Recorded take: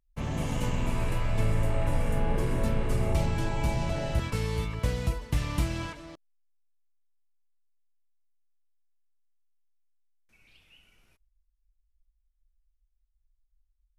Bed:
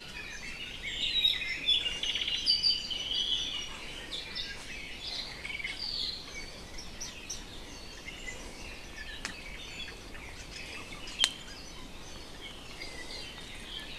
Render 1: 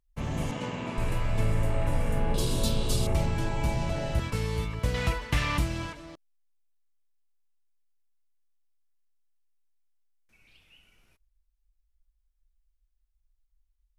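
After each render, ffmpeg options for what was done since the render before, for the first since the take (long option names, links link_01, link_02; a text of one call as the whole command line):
ffmpeg -i in.wav -filter_complex "[0:a]asettb=1/sr,asplit=3[link_01][link_02][link_03];[link_01]atrim=end=0.514[link_04];[link_02]atrim=start=0.51:end=0.98,asetpts=PTS-STARTPTS,afade=type=in:duration=0.004:curve=qsin,afade=type=out:start_time=0.466:duration=0.004:curve=qsin,highpass=180,lowpass=5000[link_05];[link_03]atrim=start=0.976[link_06];[link_04][link_05]acrossfade=duration=0.004:curve1=hsin:curve2=qsin[link_07];[link_07][link_06]acrossfade=duration=0.004:curve1=qsin:curve2=hsin,asettb=1/sr,asplit=3[link_08][link_09][link_10];[link_08]atrim=end=2.344[link_11];[link_09]atrim=start=2.34:end=3.07,asetpts=PTS-STARTPTS,afade=type=in:duration=0.004:curve=qsin,afade=type=out:start_time=0.726:duration=0.004:curve=qsin,highshelf=frequency=2800:width_type=q:width=3:gain=11[link_12];[link_10]atrim=start=3.066[link_13];[link_11][link_12]acrossfade=duration=0.004:curve1=hsin:curve2=qsin[link_14];[link_14][link_13]acrossfade=duration=0.004:curve1=qsin:curve2=hsin,asettb=1/sr,asplit=3[link_15][link_16][link_17];[link_15]atrim=end=4.944[link_18];[link_16]atrim=start=4.94:end=5.58,asetpts=PTS-STARTPTS,afade=type=in:duration=0.004:curve=qsin,afade=type=out:start_time=0.636:duration=0.004:curve=qsin,equalizer=frequency=1900:width_type=o:width=2.8:gain=11[link_19];[link_17]atrim=start=5.576[link_20];[link_18][link_19]acrossfade=duration=0.004:curve1=hsin:curve2=qsin[link_21];[link_21][link_20]acrossfade=duration=0.004:curve1=qsin:curve2=hsin" out.wav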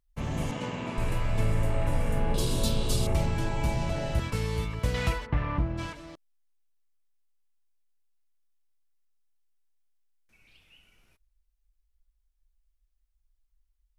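ffmpeg -i in.wav -filter_complex "[0:a]asplit=3[link_01][link_02][link_03];[link_01]afade=type=out:start_time=5.25:duration=0.02[link_04];[link_02]lowpass=1200,afade=type=in:start_time=5.25:duration=0.02,afade=type=out:start_time=5.77:duration=0.02[link_05];[link_03]afade=type=in:start_time=5.77:duration=0.02[link_06];[link_04][link_05][link_06]amix=inputs=3:normalize=0" out.wav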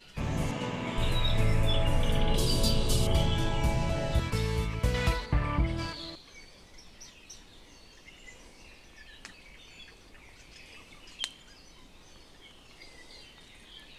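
ffmpeg -i in.wav -i bed.wav -filter_complex "[1:a]volume=-8.5dB[link_01];[0:a][link_01]amix=inputs=2:normalize=0" out.wav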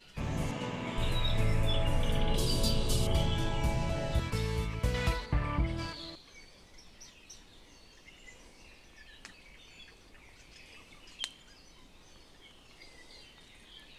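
ffmpeg -i in.wav -af "volume=-3dB" out.wav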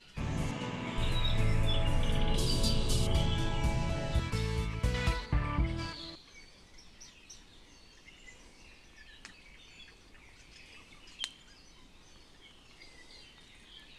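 ffmpeg -i in.wav -af "lowpass=11000,equalizer=frequency=580:width=1.5:gain=-3.5" out.wav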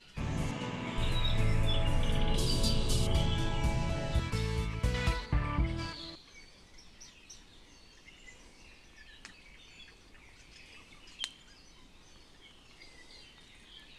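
ffmpeg -i in.wav -af anull out.wav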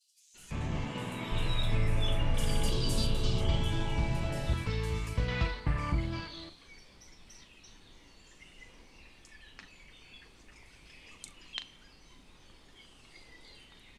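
ffmpeg -i in.wav -filter_complex "[0:a]asplit=2[link_01][link_02];[link_02]adelay=39,volume=-11.5dB[link_03];[link_01][link_03]amix=inputs=2:normalize=0,acrossover=split=5600[link_04][link_05];[link_04]adelay=340[link_06];[link_06][link_05]amix=inputs=2:normalize=0" out.wav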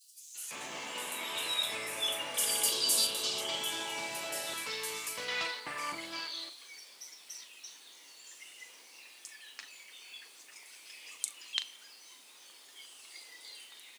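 ffmpeg -i in.wav -af "highpass=360,aemphasis=mode=production:type=riaa" out.wav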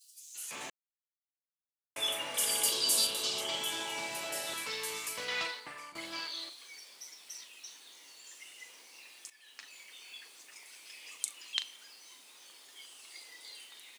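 ffmpeg -i in.wav -filter_complex "[0:a]asplit=5[link_01][link_02][link_03][link_04][link_05];[link_01]atrim=end=0.7,asetpts=PTS-STARTPTS,afade=type=out:start_time=0.696:duration=0.004:curve=hsin[link_06];[link_02]atrim=start=0.7:end=1.96,asetpts=PTS-STARTPTS,volume=0[link_07];[link_03]atrim=start=1.96:end=5.95,asetpts=PTS-STARTPTS,afade=type=in:duration=0.004:curve=hsin,afade=type=out:start_time=3.43:duration=0.56:silence=0.141254[link_08];[link_04]atrim=start=5.95:end=9.3,asetpts=PTS-STARTPTS,afade=type=in:duration=0.004:curve=hsin:silence=0.141254,afade=type=out:start_time=3.346:duration=0.004:curve=hsin:silence=0.237137[link_09];[link_05]atrim=start=9.3,asetpts=PTS-STARTPTS,afade=type=in:duration=0.48:silence=0.237137[link_10];[link_06][link_07][link_08][link_09][link_10]concat=n=5:v=0:a=1" out.wav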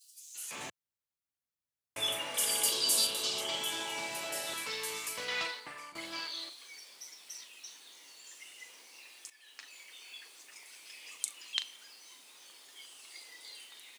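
ffmpeg -i in.wav -filter_complex "[0:a]asettb=1/sr,asplit=3[link_01][link_02][link_03];[link_01]atrim=end=0.584[link_04];[link_02]atrim=start=0.58:end=2.19,asetpts=PTS-STARTPTS,afade=type=in:duration=0.004:curve=qsin,afade=type=out:start_time=1.606:duration=0.004:curve=qsin,equalizer=frequency=97:width=0.8:gain=10[link_05];[link_03]atrim=start=2.186[link_06];[link_04][link_05]acrossfade=duration=0.004:curve1=hsin:curve2=qsin[link_07];[link_07][link_06]acrossfade=duration=0.004:curve1=qsin:curve2=hsin,asettb=1/sr,asplit=3[link_08][link_09][link_10];[link_08]atrim=end=8.994[link_11];[link_09]atrim=start=8.99:end=10.45,asetpts=PTS-STARTPTS,afade=type=in:duration=0.004:curve=qsin,afade=type=out:start_time=1.456:duration=0.004:curve=qsin,highpass=frequency=220:width=0.5412,highpass=frequency=220:width=1.3066[link_12];[link_10]atrim=start=10.446[link_13];[link_11][link_12]acrossfade=duration=0.004:curve1=hsin:curve2=qsin[link_14];[link_14][link_13]acrossfade=duration=0.004:curve1=qsin:curve2=hsin" out.wav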